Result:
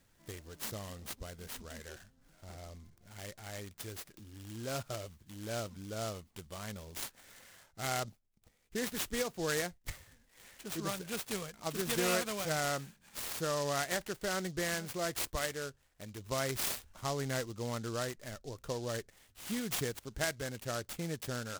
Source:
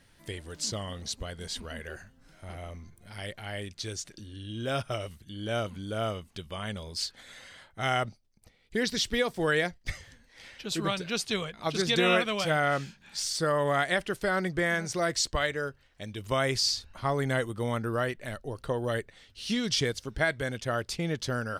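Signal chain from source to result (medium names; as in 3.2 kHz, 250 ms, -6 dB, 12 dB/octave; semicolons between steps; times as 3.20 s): delay time shaken by noise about 4.9 kHz, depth 0.073 ms; trim -7.5 dB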